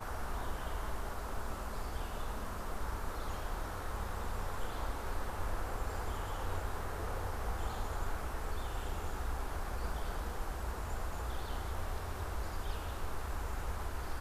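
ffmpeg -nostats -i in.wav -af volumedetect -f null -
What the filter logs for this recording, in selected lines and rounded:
mean_volume: -36.8 dB
max_volume: -24.0 dB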